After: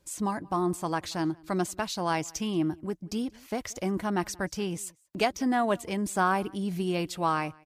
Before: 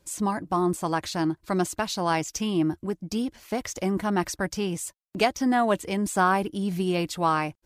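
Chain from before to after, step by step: echo from a far wall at 31 m, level -26 dB; trim -3.5 dB

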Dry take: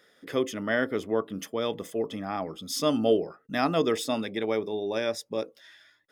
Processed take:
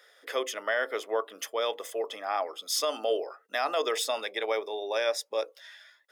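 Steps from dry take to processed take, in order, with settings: high-pass 510 Hz 24 dB/octave; peak limiter -21.5 dBFS, peak gain reduction 7.5 dB; trim +3.5 dB

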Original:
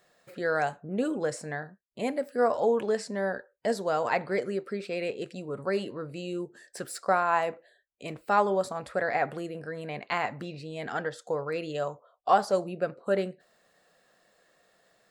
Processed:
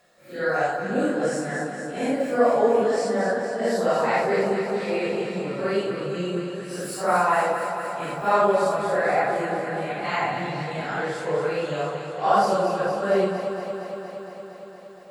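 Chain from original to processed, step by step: phase randomisation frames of 200 ms; echo whose repeats swap between lows and highs 116 ms, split 1.1 kHz, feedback 86%, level -6 dB; trim +4.5 dB

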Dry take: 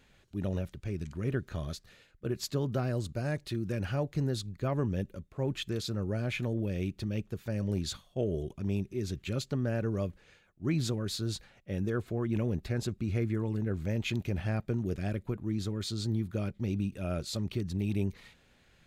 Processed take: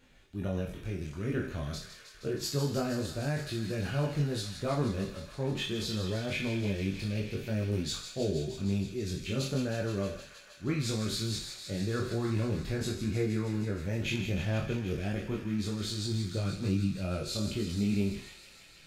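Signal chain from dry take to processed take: spectral sustain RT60 0.48 s; feedback echo behind a high-pass 157 ms, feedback 82%, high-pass 1.6 kHz, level -8.5 dB; chorus voices 6, 0.11 Hz, delay 24 ms, depth 4.3 ms; trim +2.5 dB

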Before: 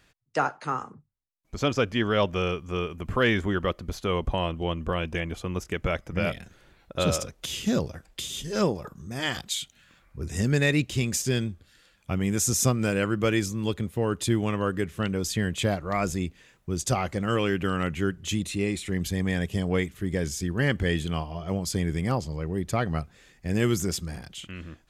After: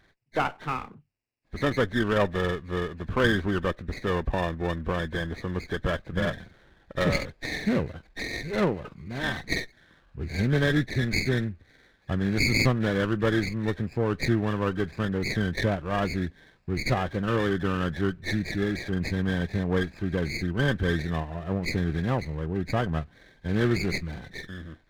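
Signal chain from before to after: knee-point frequency compression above 1.5 kHz 4:1; sliding maximum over 9 samples

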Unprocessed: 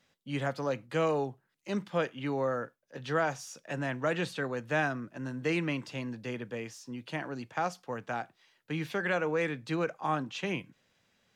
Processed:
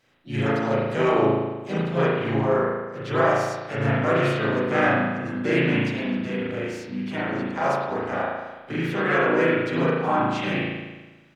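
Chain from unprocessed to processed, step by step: harmony voices -4 st -2 dB, +4 st -10 dB; spring tank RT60 1.2 s, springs 36 ms, chirp 70 ms, DRR -7 dB

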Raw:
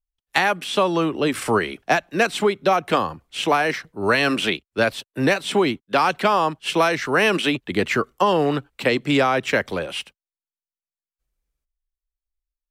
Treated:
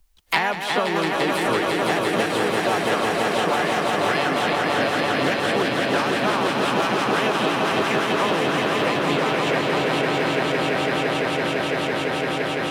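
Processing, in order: echo with a slow build-up 169 ms, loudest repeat 5, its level -4.5 dB; harmony voices +3 st -4 dB; three bands compressed up and down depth 100%; trim -8 dB

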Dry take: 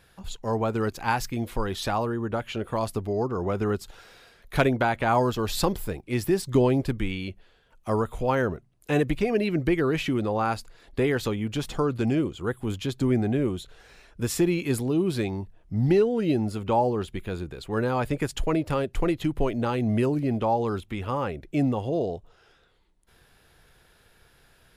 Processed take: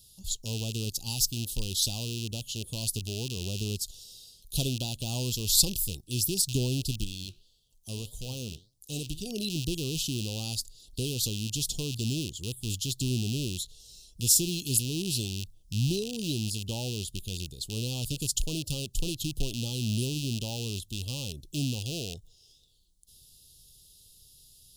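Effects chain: rattle on loud lows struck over -31 dBFS, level -19 dBFS; FFT filter 120 Hz 0 dB, 1.8 kHz -26 dB, 2.7 kHz +14 dB; 7.04–9.26 s: flange 1.7 Hz, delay 4.9 ms, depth 10 ms, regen +80%; companded quantiser 8-bit; Butterworth band-stop 2 kHz, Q 0.51; trim -2 dB

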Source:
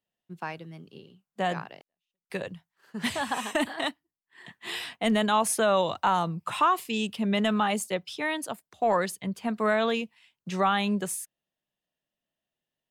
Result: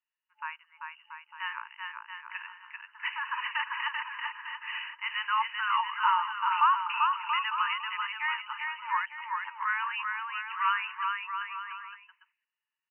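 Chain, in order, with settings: FFT band-pass 870–3000 Hz; 9.06–9.65 s: ring modulator 120 Hz -> 31 Hz; on a send: bouncing-ball echo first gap 390 ms, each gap 0.75×, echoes 5

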